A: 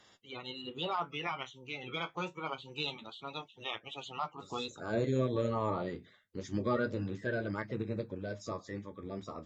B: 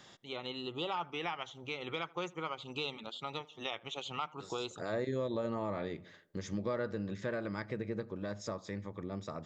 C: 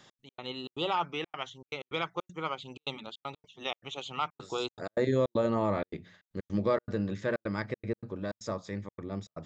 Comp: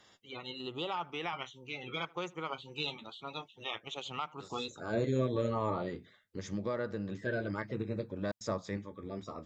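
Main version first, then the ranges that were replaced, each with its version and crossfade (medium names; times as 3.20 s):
A
0.60–1.33 s: from B
2.05–2.50 s: from B
3.87–4.48 s: from B
6.39–7.15 s: from B
8.17–8.77 s: from C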